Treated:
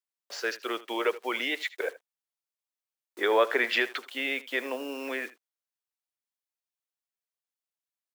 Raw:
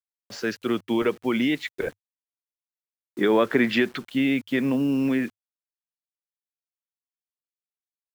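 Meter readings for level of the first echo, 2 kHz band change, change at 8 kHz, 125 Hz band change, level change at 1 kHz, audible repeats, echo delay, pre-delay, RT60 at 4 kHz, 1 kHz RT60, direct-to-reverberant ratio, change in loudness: -18.5 dB, 0.0 dB, no reading, under -30 dB, 0.0 dB, 1, 78 ms, no reverb, no reverb, no reverb, no reverb, -5.0 dB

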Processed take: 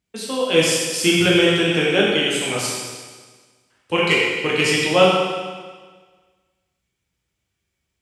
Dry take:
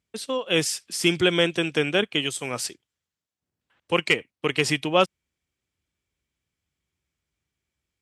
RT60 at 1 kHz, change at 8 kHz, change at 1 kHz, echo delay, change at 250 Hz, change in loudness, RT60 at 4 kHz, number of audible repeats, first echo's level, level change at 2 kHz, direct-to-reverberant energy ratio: 1.5 s, +6.5 dB, +6.0 dB, no echo, +6.5 dB, +6.0 dB, 1.5 s, no echo, no echo, +6.5 dB, -5.5 dB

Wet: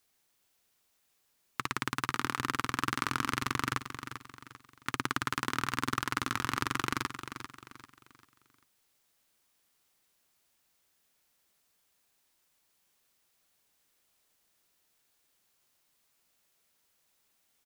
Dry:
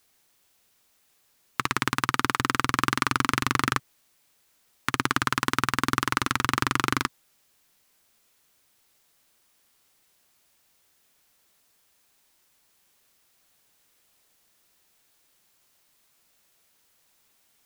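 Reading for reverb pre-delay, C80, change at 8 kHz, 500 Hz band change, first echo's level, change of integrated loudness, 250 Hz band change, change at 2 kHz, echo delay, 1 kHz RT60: no reverb, no reverb, -7.5 dB, -7.5 dB, -10.0 dB, -8.0 dB, -7.5 dB, -7.5 dB, 394 ms, no reverb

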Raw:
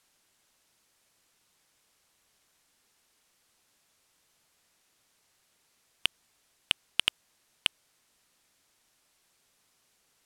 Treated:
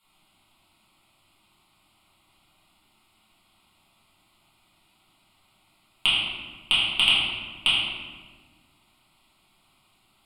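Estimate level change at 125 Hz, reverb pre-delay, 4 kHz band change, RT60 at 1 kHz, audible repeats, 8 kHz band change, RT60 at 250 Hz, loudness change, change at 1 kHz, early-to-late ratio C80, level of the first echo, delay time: +13.5 dB, 5 ms, +11.0 dB, 1.3 s, no echo, +1.0 dB, 2.1 s, +8.5 dB, +11.5 dB, 1.0 dB, no echo, no echo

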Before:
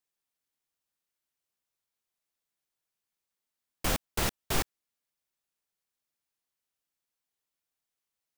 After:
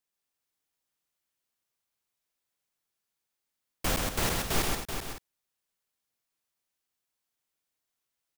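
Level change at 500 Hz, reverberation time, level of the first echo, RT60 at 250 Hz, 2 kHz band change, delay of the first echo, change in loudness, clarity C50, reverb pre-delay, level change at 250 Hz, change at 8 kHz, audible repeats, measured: +3.0 dB, no reverb, -3.0 dB, no reverb, +2.5 dB, 127 ms, +1.5 dB, no reverb, no reverb, +3.0 dB, +3.0 dB, 5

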